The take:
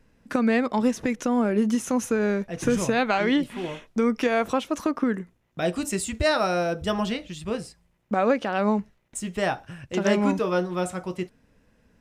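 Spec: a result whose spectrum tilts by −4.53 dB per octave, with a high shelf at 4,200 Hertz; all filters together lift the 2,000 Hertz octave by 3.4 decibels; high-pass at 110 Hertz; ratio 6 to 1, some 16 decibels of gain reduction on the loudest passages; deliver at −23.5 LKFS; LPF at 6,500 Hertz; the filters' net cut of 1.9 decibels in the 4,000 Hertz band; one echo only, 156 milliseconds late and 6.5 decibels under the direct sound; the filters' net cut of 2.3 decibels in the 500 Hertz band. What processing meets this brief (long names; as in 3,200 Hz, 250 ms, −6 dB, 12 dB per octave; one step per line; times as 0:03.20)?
high-pass filter 110 Hz
low-pass filter 6,500 Hz
parametric band 500 Hz −3 dB
parametric band 2,000 Hz +5 dB
parametric band 4,000 Hz −8.5 dB
high-shelf EQ 4,200 Hz +7.5 dB
downward compressor 6 to 1, threshold −36 dBFS
single-tap delay 156 ms −6.5 dB
level +15 dB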